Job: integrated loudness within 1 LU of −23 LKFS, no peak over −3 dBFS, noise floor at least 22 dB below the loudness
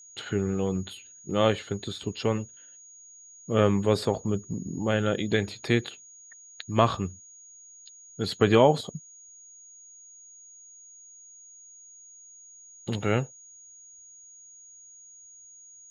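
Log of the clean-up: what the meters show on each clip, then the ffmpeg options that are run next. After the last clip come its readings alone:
interfering tone 6,700 Hz; level of the tone −48 dBFS; integrated loudness −27.0 LKFS; sample peak −5.5 dBFS; target loudness −23.0 LKFS
→ -af "bandreject=frequency=6700:width=30"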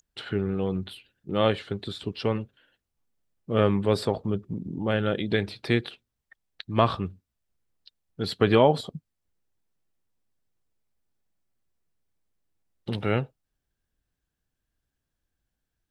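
interfering tone none found; integrated loudness −27.0 LKFS; sample peak −5.5 dBFS; target loudness −23.0 LKFS
→ -af "volume=4dB,alimiter=limit=-3dB:level=0:latency=1"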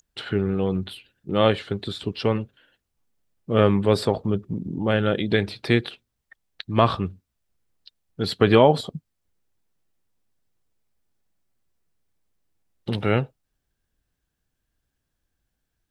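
integrated loudness −23.0 LKFS; sample peak −3.0 dBFS; background noise floor −79 dBFS

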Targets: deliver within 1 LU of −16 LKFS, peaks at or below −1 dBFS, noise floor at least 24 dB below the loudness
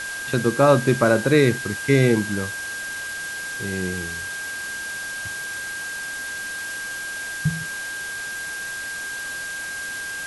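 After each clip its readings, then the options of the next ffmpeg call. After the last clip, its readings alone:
interfering tone 1,600 Hz; level of the tone −29 dBFS; background noise floor −31 dBFS; target noise floor −48 dBFS; integrated loudness −24.0 LKFS; sample peak −3.0 dBFS; target loudness −16.0 LKFS
→ -af "bandreject=frequency=1600:width=30"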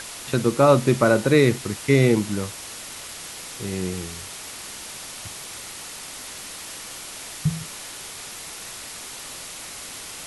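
interfering tone none found; background noise floor −38 dBFS; target noise floor −49 dBFS
→ -af "afftdn=noise_reduction=11:noise_floor=-38"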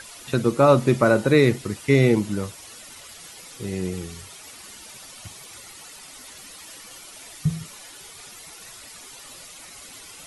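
background noise floor −44 dBFS; target noise floor −45 dBFS
→ -af "afftdn=noise_reduction=6:noise_floor=-44"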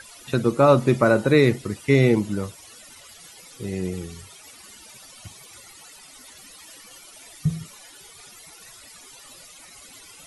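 background noise floor −47 dBFS; integrated loudness −21.0 LKFS; sample peak −3.5 dBFS; target loudness −16.0 LKFS
→ -af "volume=5dB,alimiter=limit=-1dB:level=0:latency=1"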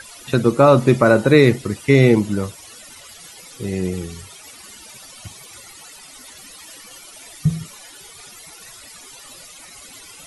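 integrated loudness −16.5 LKFS; sample peak −1.0 dBFS; background noise floor −42 dBFS

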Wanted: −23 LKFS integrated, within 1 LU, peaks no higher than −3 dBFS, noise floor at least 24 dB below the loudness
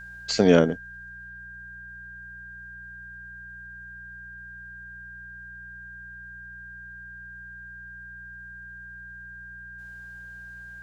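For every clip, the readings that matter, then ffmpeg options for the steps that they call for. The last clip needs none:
mains hum 60 Hz; hum harmonics up to 180 Hz; level of the hum −49 dBFS; interfering tone 1,600 Hz; level of the tone −40 dBFS; integrated loudness −32.0 LKFS; sample peak −4.0 dBFS; target loudness −23.0 LKFS
→ -af "bandreject=frequency=60:width_type=h:width=4,bandreject=frequency=120:width_type=h:width=4,bandreject=frequency=180:width_type=h:width=4"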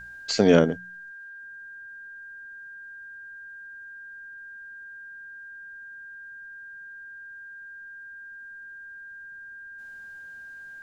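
mains hum none found; interfering tone 1,600 Hz; level of the tone −40 dBFS
→ -af "bandreject=frequency=1600:width=30"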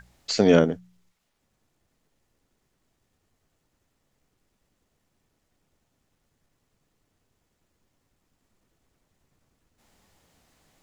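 interfering tone none found; integrated loudness −21.0 LKFS; sample peak −5.0 dBFS; target loudness −23.0 LKFS
→ -af "volume=-2dB"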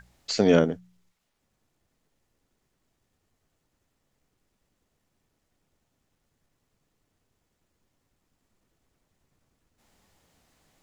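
integrated loudness −23.0 LKFS; sample peak −7.0 dBFS; background noise floor −77 dBFS

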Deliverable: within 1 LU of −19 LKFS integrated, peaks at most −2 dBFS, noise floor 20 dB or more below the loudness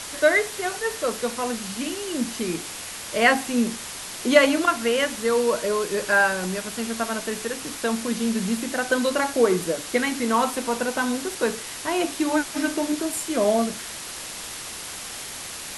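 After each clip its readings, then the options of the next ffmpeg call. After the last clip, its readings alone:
background noise floor −36 dBFS; target noise floor −44 dBFS; integrated loudness −24.0 LKFS; sample peak −2.5 dBFS; target loudness −19.0 LKFS
→ -af "afftdn=noise_reduction=8:noise_floor=-36"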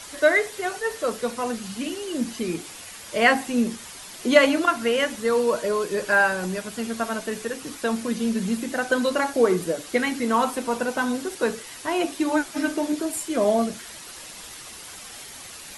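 background noise floor −41 dBFS; target noise floor −44 dBFS
→ -af "afftdn=noise_reduction=6:noise_floor=-41"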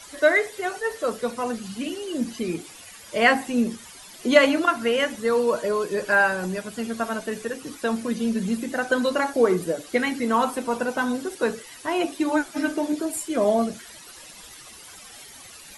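background noise floor −45 dBFS; integrated loudness −24.0 LKFS; sample peak −3.0 dBFS; target loudness −19.0 LKFS
→ -af "volume=5dB,alimiter=limit=-2dB:level=0:latency=1"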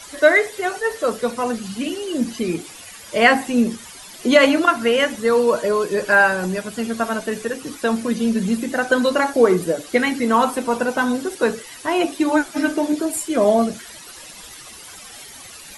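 integrated loudness −19.5 LKFS; sample peak −2.0 dBFS; background noise floor −40 dBFS

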